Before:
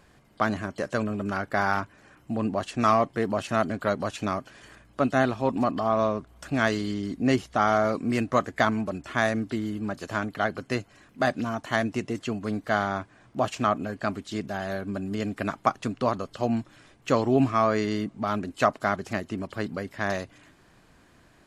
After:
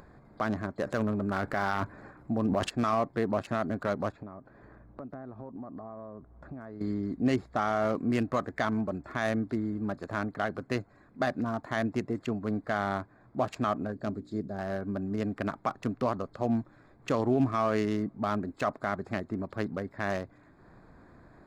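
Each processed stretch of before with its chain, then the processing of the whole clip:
0.84–2.70 s: companded quantiser 8-bit + transient shaper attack +2 dB, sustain +10 dB
4.12–6.81 s: low-pass 1 kHz 6 dB/octave + compression 10:1, threshold -36 dBFS
13.92–14.59 s: high-order bell 1.5 kHz -9 dB 2.4 oct + hum notches 60/120/180/240/300/360 Hz
whole clip: local Wiener filter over 15 samples; peak limiter -15 dBFS; upward compressor, threshold -45 dBFS; trim -1.5 dB

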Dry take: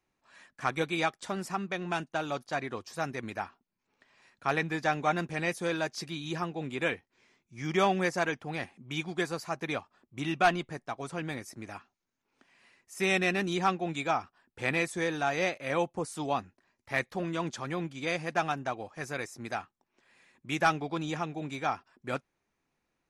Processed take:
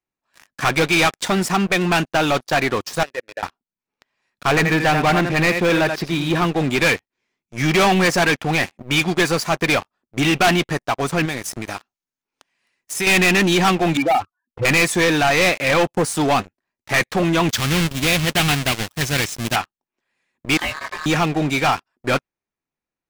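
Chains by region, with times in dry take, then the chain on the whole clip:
3.03–3.43 s: vowel filter e + peaking EQ 200 Hz -10 dB 0.22 oct
4.49–6.45 s: distance through air 240 m + delay 84 ms -10.5 dB
11.25–13.07 s: treble shelf 2.9 kHz +6 dB + compression 2.5:1, threshold -42 dBFS
13.97–14.65 s: spectral contrast enhancement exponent 3.5 + distance through air 370 m
17.49–19.56 s: square wave that keeps the level + peaking EQ 560 Hz -13 dB 2.6 oct + loudspeaker Doppler distortion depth 0.23 ms
20.57–21.06 s: ring modulator 1.4 kHz + compression 5:1, threshold -38 dBFS + detune thickener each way 45 cents
whole clip: dynamic bell 2.6 kHz, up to +5 dB, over -46 dBFS, Q 1.1; waveshaping leveller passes 5

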